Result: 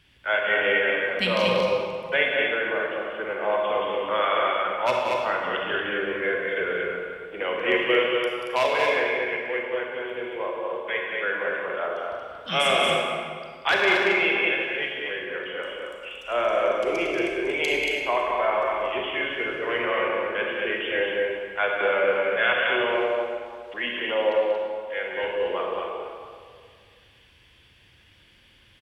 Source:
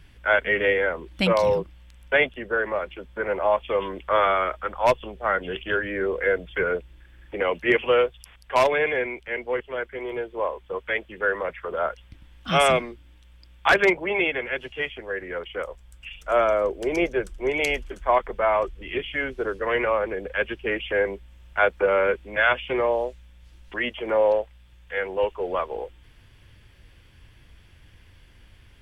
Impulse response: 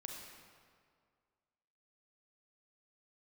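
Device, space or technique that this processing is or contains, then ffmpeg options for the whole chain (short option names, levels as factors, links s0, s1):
stadium PA: -filter_complex "[0:a]highpass=f=170:p=1,equalizer=f=3200:t=o:w=1:g=7,aecho=1:1:186.6|230.3:0.398|0.631[s0];[1:a]atrim=start_sample=2205[s1];[s0][s1]afir=irnorm=-1:irlink=0"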